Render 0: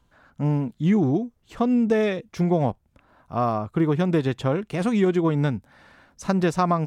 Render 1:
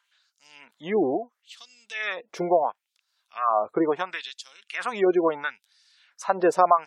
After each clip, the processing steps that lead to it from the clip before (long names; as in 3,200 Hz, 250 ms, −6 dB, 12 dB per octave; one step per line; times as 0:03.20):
auto-filter high-pass sine 0.73 Hz 450–5,100 Hz
gate on every frequency bin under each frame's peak −30 dB strong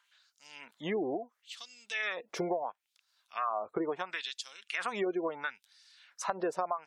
downward compressor 5 to 1, threshold −31 dBFS, peak gain reduction 16.5 dB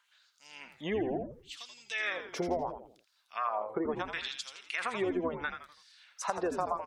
echo with shifted repeats 83 ms, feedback 38%, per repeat −100 Hz, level −8 dB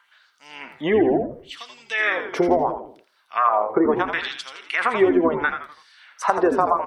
convolution reverb RT60 0.45 s, pre-delay 3 ms, DRR 12.5 dB
level +4.5 dB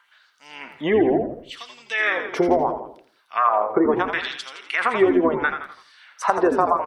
single-tap delay 168 ms −17 dB